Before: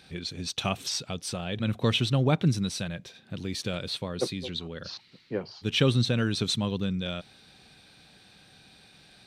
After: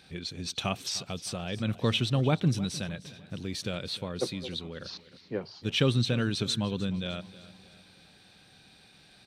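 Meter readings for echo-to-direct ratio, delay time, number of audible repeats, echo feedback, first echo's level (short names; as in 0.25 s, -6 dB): -17.0 dB, 0.305 s, 3, 44%, -18.0 dB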